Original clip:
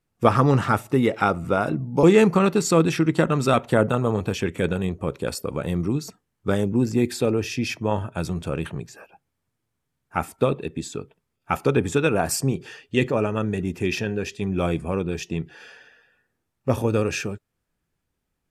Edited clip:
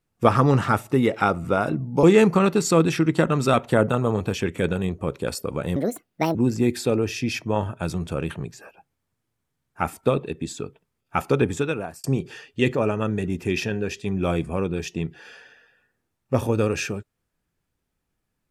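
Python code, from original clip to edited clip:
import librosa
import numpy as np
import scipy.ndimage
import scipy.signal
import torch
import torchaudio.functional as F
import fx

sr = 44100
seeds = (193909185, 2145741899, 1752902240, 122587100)

y = fx.edit(x, sr, fx.speed_span(start_s=5.76, length_s=0.94, speed=1.6),
    fx.fade_out_span(start_s=11.78, length_s=0.61), tone=tone)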